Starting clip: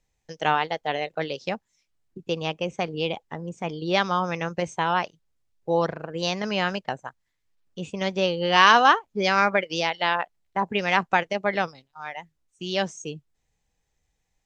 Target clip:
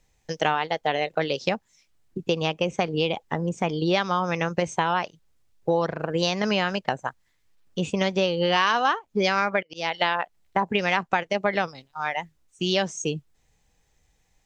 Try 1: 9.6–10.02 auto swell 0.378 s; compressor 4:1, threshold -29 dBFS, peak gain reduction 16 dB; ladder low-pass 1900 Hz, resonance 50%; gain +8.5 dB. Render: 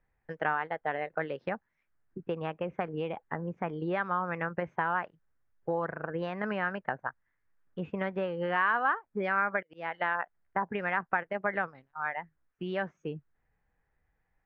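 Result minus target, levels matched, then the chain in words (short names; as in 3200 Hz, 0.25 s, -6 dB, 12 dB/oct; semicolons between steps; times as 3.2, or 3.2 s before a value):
2000 Hz band +3.0 dB
9.6–10.02 auto swell 0.378 s; compressor 4:1, threshold -29 dBFS, peak gain reduction 16 dB; gain +8.5 dB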